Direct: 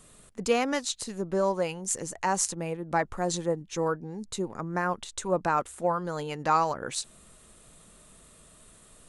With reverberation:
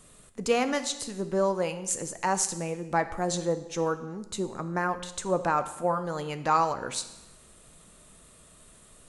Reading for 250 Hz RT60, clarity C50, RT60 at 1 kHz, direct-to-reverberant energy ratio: 0.90 s, 12.5 dB, 1.0 s, 10.0 dB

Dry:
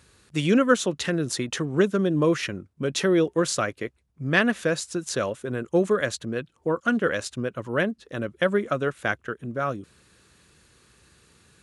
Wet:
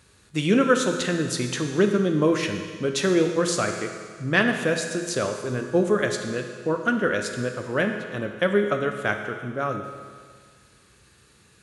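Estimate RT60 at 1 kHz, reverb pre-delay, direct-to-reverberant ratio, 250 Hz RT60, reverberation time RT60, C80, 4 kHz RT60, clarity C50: 1.8 s, 10 ms, 4.0 dB, 1.8 s, 1.8 s, 7.0 dB, 1.8 s, 6.0 dB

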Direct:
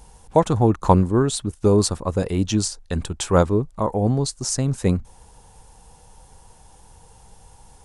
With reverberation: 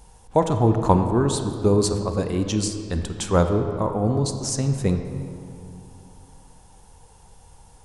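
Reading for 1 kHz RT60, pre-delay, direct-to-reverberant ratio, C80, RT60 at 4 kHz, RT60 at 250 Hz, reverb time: 2.4 s, 28 ms, 6.0 dB, 8.0 dB, 1.4 s, 3.0 s, 2.5 s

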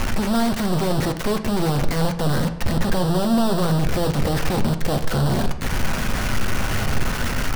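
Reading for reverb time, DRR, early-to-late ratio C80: 1.0 s, 6.0 dB, 14.0 dB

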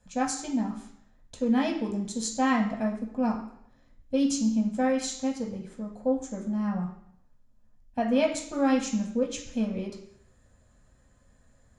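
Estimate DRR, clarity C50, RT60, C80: −1.5 dB, 7.5 dB, 0.70 s, 10.0 dB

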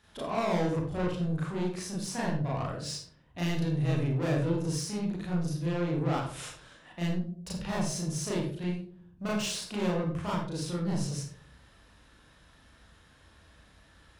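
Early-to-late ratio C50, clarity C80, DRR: 4.0 dB, 5.5 dB, −6.0 dB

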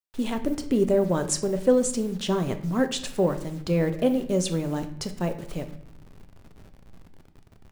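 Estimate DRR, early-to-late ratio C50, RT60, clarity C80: 7.5 dB, 12.5 dB, 0.70 s, 15.0 dB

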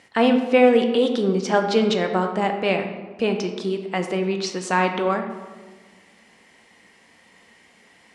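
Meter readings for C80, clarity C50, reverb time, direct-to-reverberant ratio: 9.0 dB, 7.0 dB, 1.4 s, 4.5 dB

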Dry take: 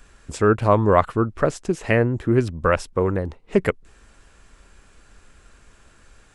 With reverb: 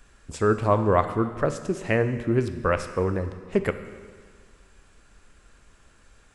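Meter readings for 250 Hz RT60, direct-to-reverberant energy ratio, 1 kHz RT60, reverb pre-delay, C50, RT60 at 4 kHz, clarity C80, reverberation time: 1.7 s, 9.0 dB, 1.7 s, 12 ms, 10.5 dB, 1.6 s, 12.0 dB, 1.7 s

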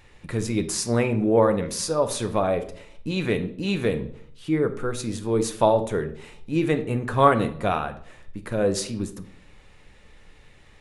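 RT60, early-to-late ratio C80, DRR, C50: 0.60 s, 16.5 dB, 7.5 dB, 12.5 dB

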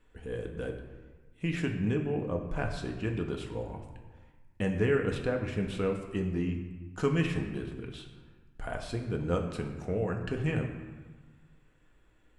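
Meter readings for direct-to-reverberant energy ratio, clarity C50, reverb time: 2.0 dB, 6.5 dB, 1.3 s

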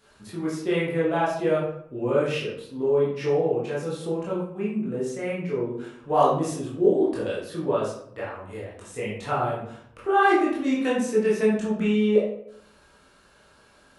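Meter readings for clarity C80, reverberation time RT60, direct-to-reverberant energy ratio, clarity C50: 6.5 dB, 0.70 s, −7.5 dB, 2.0 dB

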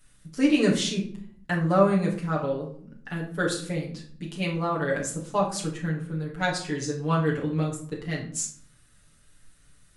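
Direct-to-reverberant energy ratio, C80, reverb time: −4.0 dB, 11.5 dB, 0.60 s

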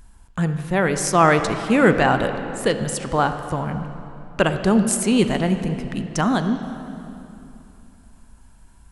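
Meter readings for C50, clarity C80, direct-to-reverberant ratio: 8.5 dB, 9.5 dB, 8.0 dB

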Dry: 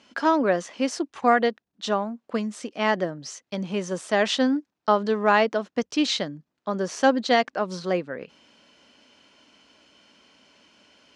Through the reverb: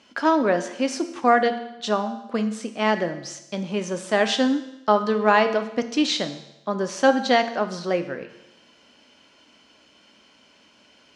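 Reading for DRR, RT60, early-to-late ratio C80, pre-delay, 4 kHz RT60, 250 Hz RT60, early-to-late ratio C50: 8.0 dB, 0.95 s, 13.0 dB, 9 ms, 0.90 s, 0.90 s, 11.5 dB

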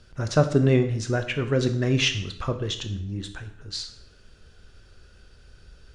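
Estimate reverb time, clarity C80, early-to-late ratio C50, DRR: 0.65 s, 14.0 dB, 11.5 dB, 7.5 dB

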